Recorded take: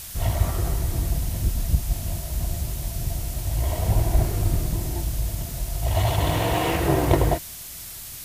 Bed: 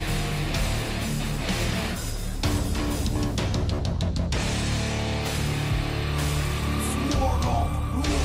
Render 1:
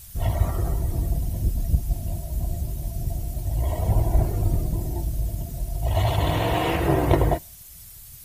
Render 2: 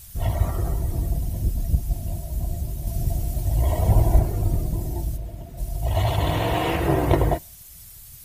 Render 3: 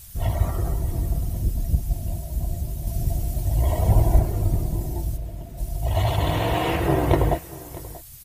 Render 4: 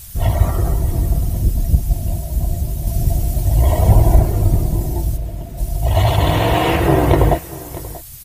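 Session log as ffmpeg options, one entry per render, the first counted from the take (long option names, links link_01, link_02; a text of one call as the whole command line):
ffmpeg -i in.wav -af "afftdn=noise_reduction=12:noise_floor=-38" out.wav
ffmpeg -i in.wav -filter_complex "[0:a]asplit=3[link_01][link_02][link_03];[link_01]afade=type=out:start_time=5.16:duration=0.02[link_04];[link_02]bass=frequency=250:gain=-7,treble=frequency=4000:gain=-13,afade=type=in:start_time=5.16:duration=0.02,afade=type=out:start_time=5.57:duration=0.02[link_05];[link_03]afade=type=in:start_time=5.57:duration=0.02[link_06];[link_04][link_05][link_06]amix=inputs=3:normalize=0,asplit=3[link_07][link_08][link_09];[link_07]atrim=end=2.872[link_10];[link_08]atrim=start=2.868:end=4.192,asetpts=PTS-STARTPTS,volume=3.5dB[link_11];[link_09]atrim=start=4.188[link_12];[link_10][link_11]acrossfade=duration=0.004:curve1=hsin:curve2=hsin[link_13];[link_13][link_12]acrossfade=duration=0.004:curve1=hsin:curve2=hsin" out.wav
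ffmpeg -i in.wav -af "aecho=1:1:634:0.119" out.wav
ffmpeg -i in.wav -af "volume=7.5dB,alimiter=limit=-1dB:level=0:latency=1" out.wav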